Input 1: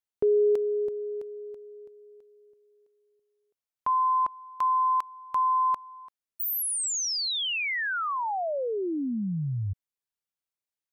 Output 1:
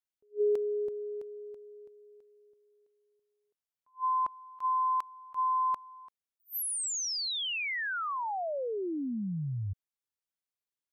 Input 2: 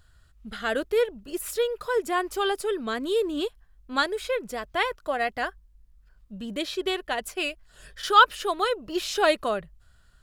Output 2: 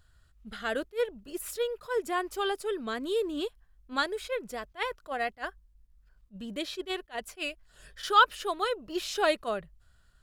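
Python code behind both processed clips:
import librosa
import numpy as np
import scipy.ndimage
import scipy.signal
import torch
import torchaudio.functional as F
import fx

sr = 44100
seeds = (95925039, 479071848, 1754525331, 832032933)

y = fx.attack_slew(x, sr, db_per_s=360.0)
y = y * librosa.db_to_amplitude(-4.5)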